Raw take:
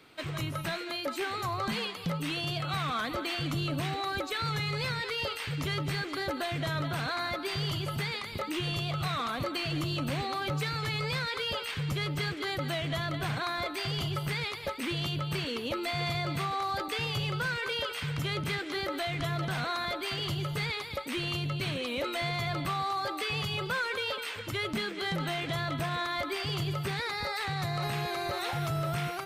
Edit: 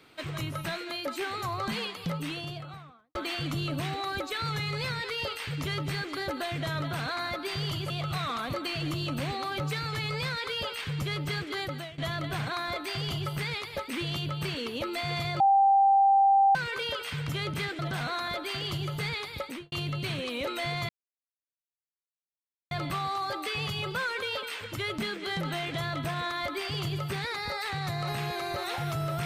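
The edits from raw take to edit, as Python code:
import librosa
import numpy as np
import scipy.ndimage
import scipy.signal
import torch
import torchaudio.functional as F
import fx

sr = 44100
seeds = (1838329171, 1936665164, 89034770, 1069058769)

y = fx.studio_fade_out(x, sr, start_s=2.08, length_s=1.07)
y = fx.studio_fade_out(y, sr, start_s=21.03, length_s=0.26)
y = fx.edit(y, sr, fx.cut(start_s=7.9, length_s=0.9),
    fx.fade_out_to(start_s=12.52, length_s=0.36, floor_db=-19.0),
    fx.bleep(start_s=16.3, length_s=1.15, hz=787.0, db=-17.5),
    fx.cut(start_s=18.69, length_s=0.67),
    fx.insert_silence(at_s=22.46, length_s=1.82), tone=tone)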